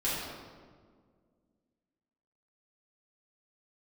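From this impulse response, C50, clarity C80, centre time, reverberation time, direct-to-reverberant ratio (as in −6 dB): −1.5 dB, 1.0 dB, 103 ms, 1.8 s, −9.5 dB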